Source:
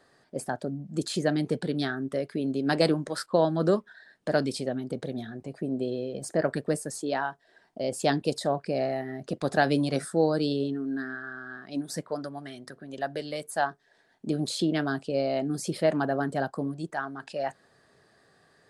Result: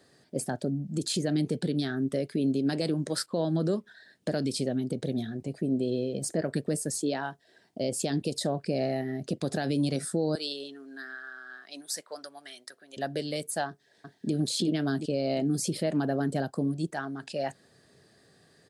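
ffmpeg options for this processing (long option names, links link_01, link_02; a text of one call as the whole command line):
ffmpeg -i in.wav -filter_complex "[0:a]asettb=1/sr,asplit=3[link_01][link_02][link_03];[link_01]atrim=end=10.354[link_04];[link_02]atrim=start=10.35:end=12.97,asetpts=PTS-STARTPTS,afade=type=in:duration=0.004:curve=qsin,afade=type=out:start_time=2.616:duration=0.004:curve=qsin,highpass=840[link_05];[link_03]atrim=start=12.966[link_06];[link_04][link_05]acrossfade=duration=0.004:curve1=hsin:curve2=qsin[link_07];[link_07][link_06]acrossfade=duration=0.004:curve1=qsin:curve2=hsin,asplit=2[link_08][link_09];[link_09]afade=type=in:start_time=13.68:duration=0.01,afade=type=out:start_time=14.33:duration=0.01,aecho=0:1:360|720|1080|1440|1800:0.668344|0.267338|0.106935|0.042774|0.0171096[link_10];[link_08][link_10]amix=inputs=2:normalize=0,equalizer=frequency=1100:width=0.68:gain=-11,alimiter=level_in=0.5dB:limit=-24dB:level=0:latency=1:release=126,volume=-0.5dB,highpass=63,volume=5.5dB" out.wav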